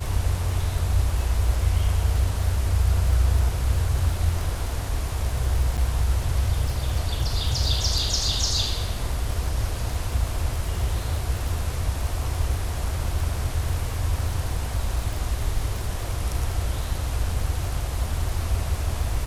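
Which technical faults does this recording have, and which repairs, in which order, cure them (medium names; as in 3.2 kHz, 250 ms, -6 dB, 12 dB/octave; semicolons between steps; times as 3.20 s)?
crackle 38 per s -29 dBFS
5.77–5.78 s: dropout 8.3 ms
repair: de-click; interpolate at 5.77 s, 8.3 ms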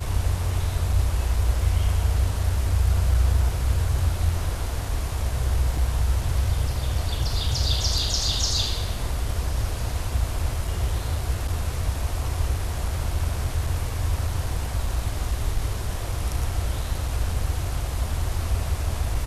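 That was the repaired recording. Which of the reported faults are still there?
nothing left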